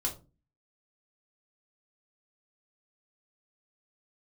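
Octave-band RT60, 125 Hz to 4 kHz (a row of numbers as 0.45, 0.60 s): 0.50, 0.50, 0.35, 0.30, 0.20, 0.20 s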